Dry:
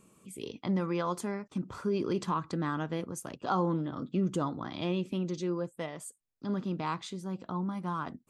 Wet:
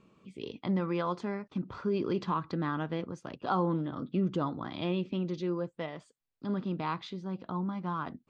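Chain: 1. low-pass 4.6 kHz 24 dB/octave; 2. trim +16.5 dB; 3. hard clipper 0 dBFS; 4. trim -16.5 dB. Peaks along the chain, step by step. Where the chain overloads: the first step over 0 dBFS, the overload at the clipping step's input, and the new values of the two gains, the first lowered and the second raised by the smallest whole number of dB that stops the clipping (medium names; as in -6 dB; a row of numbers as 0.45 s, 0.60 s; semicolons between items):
-18.0 dBFS, -1.5 dBFS, -1.5 dBFS, -18.0 dBFS; nothing clips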